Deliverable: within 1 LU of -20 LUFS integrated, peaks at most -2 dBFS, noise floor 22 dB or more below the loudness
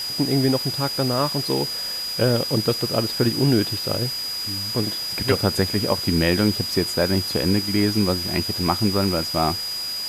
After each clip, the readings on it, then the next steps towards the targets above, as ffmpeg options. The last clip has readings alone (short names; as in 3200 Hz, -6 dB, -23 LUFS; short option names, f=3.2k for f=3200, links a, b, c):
steady tone 4900 Hz; tone level -26 dBFS; noise floor -28 dBFS; noise floor target -44 dBFS; loudness -21.5 LUFS; peak -4.5 dBFS; loudness target -20.0 LUFS
-> -af "bandreject=f=4.9k:w=30"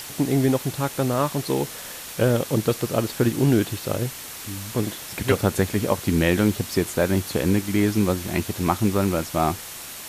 steady tone none; noise floor -37 dBFS; noise floor target -46 dBFS
-> -af "afftdn=nr=9:nf=-37"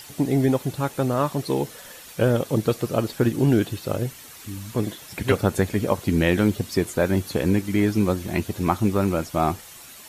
noise floor -44 dBFS; noise floor target -46 dBFS
-> -af "afftdn=nr=6:nf=-44"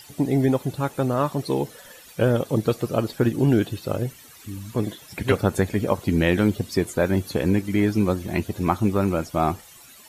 noise floor -48 dBFS; loudness -23.5 LUFS; peak -6.0 dBFS; loudness target -20.0 LUFS
-> -af "volume=3.5dB"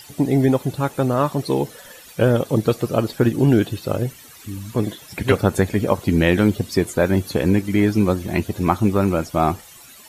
loudness -20.0 LUFS; peak -2.5 dBFS; noise floor -44 dBFS